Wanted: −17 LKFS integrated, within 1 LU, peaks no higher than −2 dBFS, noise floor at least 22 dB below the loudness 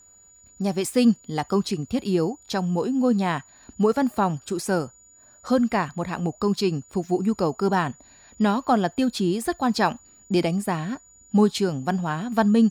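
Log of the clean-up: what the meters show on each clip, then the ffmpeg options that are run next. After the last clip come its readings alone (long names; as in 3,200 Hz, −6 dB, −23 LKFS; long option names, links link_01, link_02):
interfering tone 6,900 Hz; level of the tone −51 dBFS; integrated loudness −24.0 LKFS; sample peak −6.5 dBFS; target loudness −17.0 LKFS
→ -af "bandreject=frequency=6900:width=30"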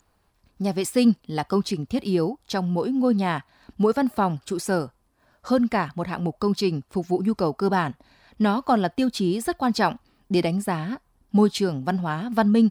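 interfering tone none found; integrated loudness −24.0 LKFS; sample peak −6.5 dBFS; target loudness −17.0 LKFS
→ -af "volume=7dB,alimiter=limit=-2dB:level=0:latency=1"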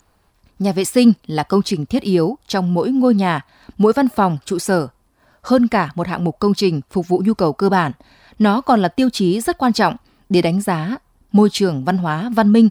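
integrated loudness −17.0 LKFS; sample peak −2.0 dBFS; background noise floor −60 dBFS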